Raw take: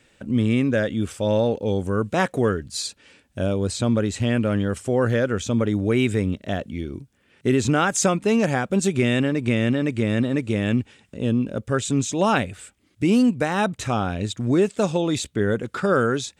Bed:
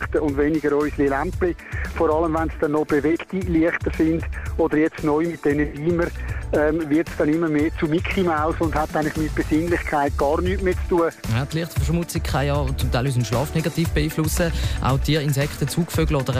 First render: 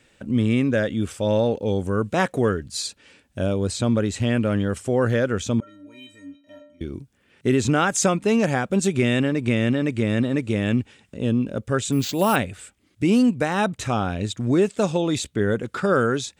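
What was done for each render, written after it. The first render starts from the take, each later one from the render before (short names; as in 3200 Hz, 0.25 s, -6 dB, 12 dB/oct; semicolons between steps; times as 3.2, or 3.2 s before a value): 5.6–6.81 metallic resonator 280 Hz, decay 0.7 s, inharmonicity 0.03; 11.92–12.36 careless resampling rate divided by 4×, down none, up hold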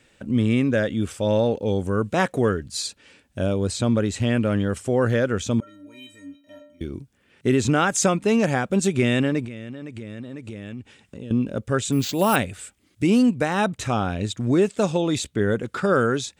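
5.51–6.87 high shelf 9600 Hz +10 dB; 9.45–11.31 compressor, threshold -32 dBFS; 12.32–13.07 high shelf 5100 Hz +5 dB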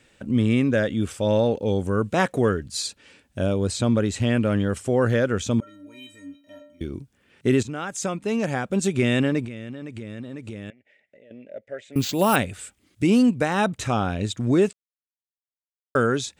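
7.63–9.22 fade in, from -14.5 dB; 10.7–11.96 double band-pass 1100 Hz, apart 1.7 oct; 14.73–15.95 mute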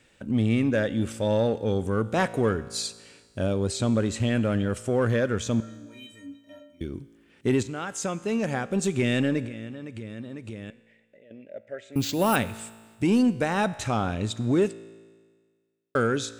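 in parallel at -7.5 dB: hard clip -18.5 dBFS, distortion -11 dB; on the sum: resonator 56 Hz, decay 1.6 s, harmonics all, mix 50%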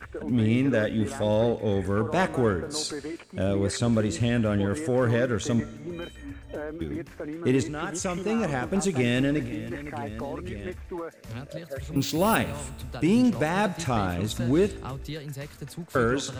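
add bed -16 dB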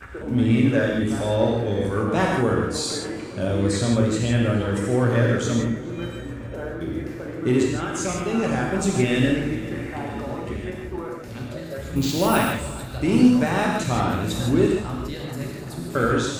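darkening echo 0.426 s, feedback 85%, low-pass 3500 Hz, level -19 dB; non-linear reverb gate 0.19 s flat, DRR -1.5 dB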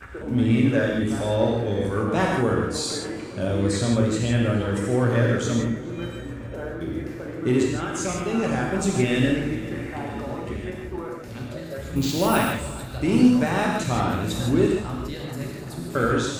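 gain -1 dB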